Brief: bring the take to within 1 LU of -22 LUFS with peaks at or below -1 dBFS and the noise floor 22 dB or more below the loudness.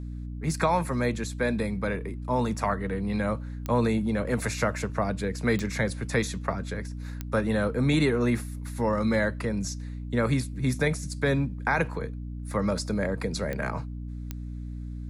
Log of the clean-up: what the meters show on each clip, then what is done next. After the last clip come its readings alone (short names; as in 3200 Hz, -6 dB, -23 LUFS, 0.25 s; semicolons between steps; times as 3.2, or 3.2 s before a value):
clicks 5; hum 60 Hz; harmonics up to 300 Hz; hum level -33 dBFS; loudness -28.5 LUFS; peak -11.5 dBFS; loudness target -22.0 LUFS
-> de-click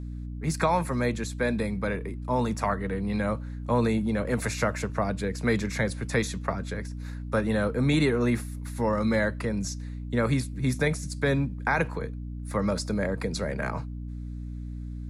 clicks 0; hum 60 Hz; harmonics up to 300 Hz; hum level -33 dBFS
-> notches 60/120/180/240/300 Hz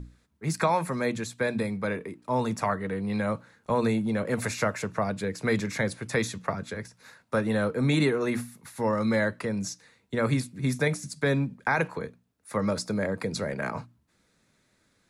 hum none; loudness -28.5 LUFS; peak -11.5 dBFS; loudness target -22.0 LUFS
-> gain +6.5 dB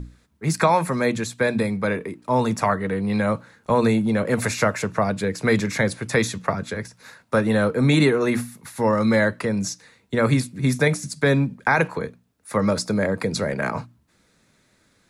loudness -22.0 LUFS; peak -5.5 dBFS; noise floor -63 dBFS